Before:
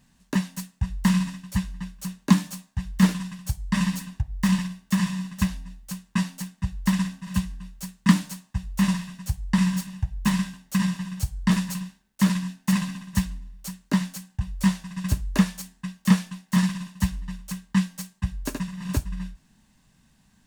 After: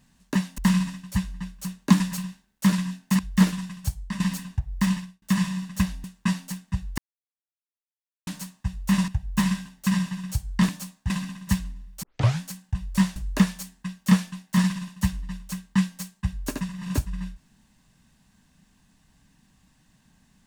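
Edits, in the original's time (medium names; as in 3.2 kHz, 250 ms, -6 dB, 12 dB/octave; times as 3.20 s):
0.58–0.98 s: delete
2.40–2.81 s: swap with 11.57–12.76 s
3.52–3.82 s: fade out, to -14 dB
4.42–4.84 s: fade out
5.66–5.94 s: delete
6.88–8.17 s: mute
8.98–9.96 s: delete
13.69 s: tape start 0.38 s
14.82–15.15 s: delete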